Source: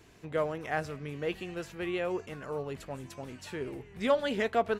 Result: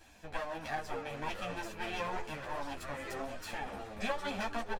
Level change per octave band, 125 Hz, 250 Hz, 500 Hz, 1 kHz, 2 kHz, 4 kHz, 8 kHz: −6.5, −7.5, −9.5, −1.5, −2.0, −1.5, +1.5 decibels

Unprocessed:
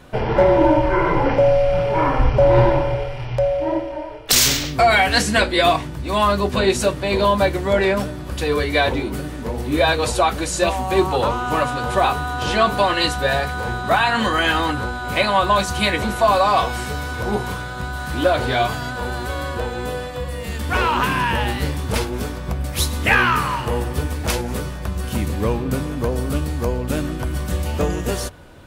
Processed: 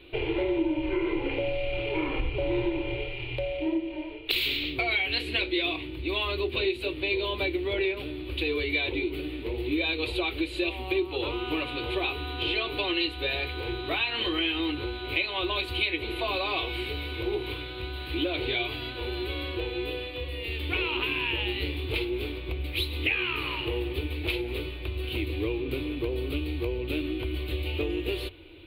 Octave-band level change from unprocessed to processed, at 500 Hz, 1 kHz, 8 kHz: −11.5 dB, −19.0 dB, below −25 dB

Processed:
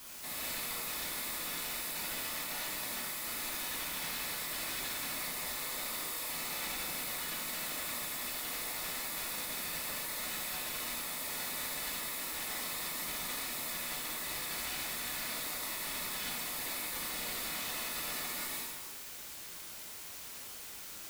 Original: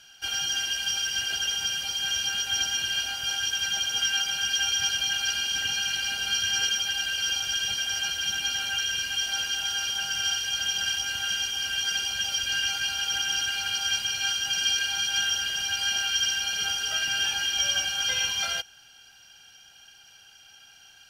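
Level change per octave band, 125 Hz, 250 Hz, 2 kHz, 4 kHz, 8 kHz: −5.5, +3.5, −12.5, −17.0, −9.5 decibels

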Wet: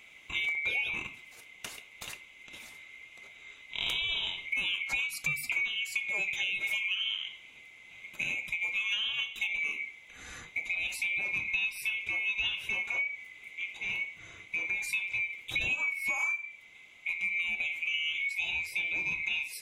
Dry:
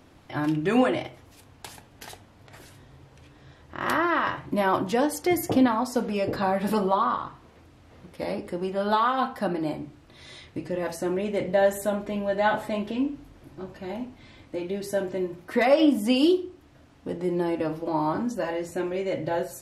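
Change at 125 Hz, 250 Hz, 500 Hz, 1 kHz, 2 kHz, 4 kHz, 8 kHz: −18.0, −31.0, −29.5, −23.5, +5.0, +5.0, −3.0 decibels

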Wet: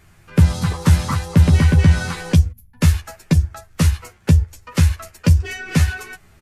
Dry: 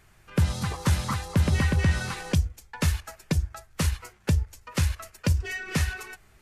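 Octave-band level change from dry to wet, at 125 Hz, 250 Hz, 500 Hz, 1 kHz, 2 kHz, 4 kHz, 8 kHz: +10.5, +10.5, +6.5, +5.5, +5.0, +5.0, +5.0 decibels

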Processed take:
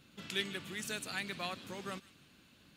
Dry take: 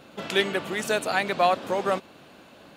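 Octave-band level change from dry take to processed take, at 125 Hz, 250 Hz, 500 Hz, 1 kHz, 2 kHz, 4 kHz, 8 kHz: −9.5, −12.0, −20.5, −21.0, −12.5, −9.0, −7.5 decibels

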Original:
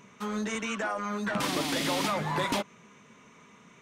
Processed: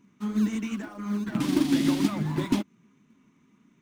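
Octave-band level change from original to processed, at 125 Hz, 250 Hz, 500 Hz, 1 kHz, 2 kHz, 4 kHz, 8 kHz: +6.5, +9.0, −3.5, −8.0, −7.0, −4.5, −4.5 decibels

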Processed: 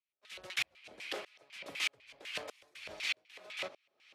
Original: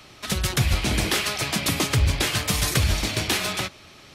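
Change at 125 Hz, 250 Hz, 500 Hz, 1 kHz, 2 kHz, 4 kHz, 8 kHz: below −40 dB, −30.0 dB, −17.0 dB, −20.5 dB, −12.5 dB, −15.5 dB, −23.0 dB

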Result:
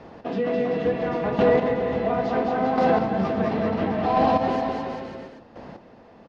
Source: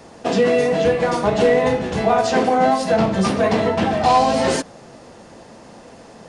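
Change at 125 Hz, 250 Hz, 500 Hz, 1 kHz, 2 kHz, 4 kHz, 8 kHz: −5.0 dB, −4.0 dB, −5.5 dB, −5.5 dB, −7.5 dB, −12.5 dB, below −25 dB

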